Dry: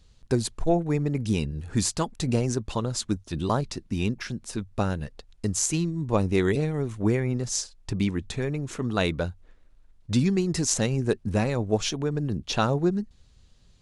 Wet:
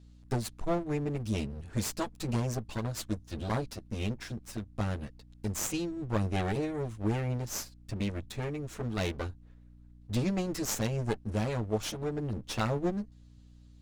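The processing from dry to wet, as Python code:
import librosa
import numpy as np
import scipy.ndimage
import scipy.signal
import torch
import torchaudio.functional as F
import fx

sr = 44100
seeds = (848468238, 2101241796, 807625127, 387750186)

y = fx.lower_of_two(x, sr, delay_ms=9.2)
y = fx.add_hum(y, sr, base_hz=60, snr_db=21)
y = F.gain(torch.from_numpy(y), -6.5).numpy()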